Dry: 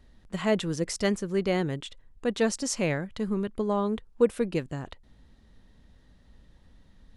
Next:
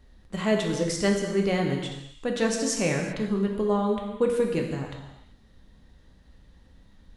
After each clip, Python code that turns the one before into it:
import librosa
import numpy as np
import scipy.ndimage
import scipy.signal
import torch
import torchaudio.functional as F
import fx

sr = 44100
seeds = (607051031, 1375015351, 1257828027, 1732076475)

y = fx.rev_gated(x, sr, seeds[0], gate_ms=410, shape='falling', drr_db=1.0)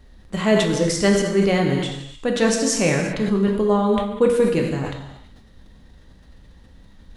y = fx.sustainer(x, sr, db_per_s=62.0)
y = F.gain(torch.from_numpy(y), 6.0).numpy()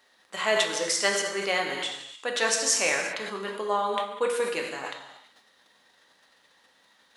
y = scipy.signal.sosfilt(scipy.signal.butter(2, 810.0, 'highpass', fs=sr, output='sos'), x)